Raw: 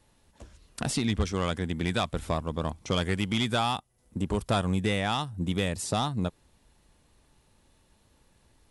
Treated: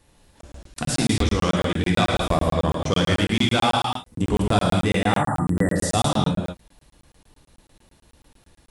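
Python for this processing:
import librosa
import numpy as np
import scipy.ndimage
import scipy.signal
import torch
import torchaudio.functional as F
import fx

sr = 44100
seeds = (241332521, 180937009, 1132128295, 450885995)

p1 = fx.spec_erase(x, sr, start_s=4.98, length_s=0.77, low_hz=2000.0, high_hz=7200.0)
p2 = fx.rider(p1, sr, range_db=4, speed_s=0.5)
p3 = p1 + (p2 * librosa.db_to_amplitude(2.0))
p4 = fx.rev_gated(p3, sr, seeds[0], gate_ms=270, shape='flat', drr_db=-2.0)
p5 = fx.buffer_crackle(p4, sr, first_s=0.41, period_s=0.11, block=1024, kind='zero')
y = p5 * librosa.db_to_amplitude(-2.5)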